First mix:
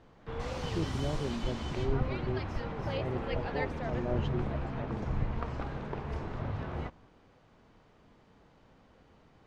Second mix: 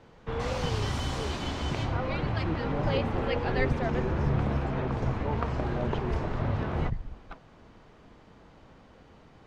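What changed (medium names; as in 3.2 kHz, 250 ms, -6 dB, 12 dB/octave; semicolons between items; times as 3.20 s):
speech: entry +1.70 s; background +6.5 dB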